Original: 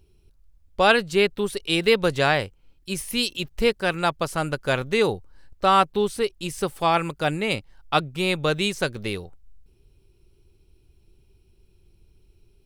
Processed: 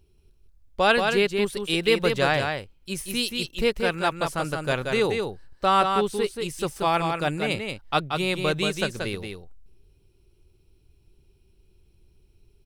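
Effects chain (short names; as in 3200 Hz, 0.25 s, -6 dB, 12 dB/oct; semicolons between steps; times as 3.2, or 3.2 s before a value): echo 0.18 s -5 dB; gain -2.5 dB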